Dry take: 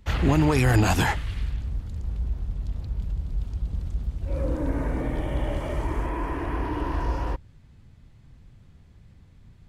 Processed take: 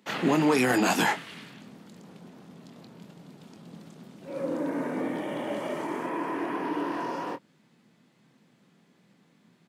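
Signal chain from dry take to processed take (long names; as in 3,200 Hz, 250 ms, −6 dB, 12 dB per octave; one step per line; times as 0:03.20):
Butterworth high-pass 180 Hz 36 dB per octave
double-tracking delay 24 ms −9.5 dB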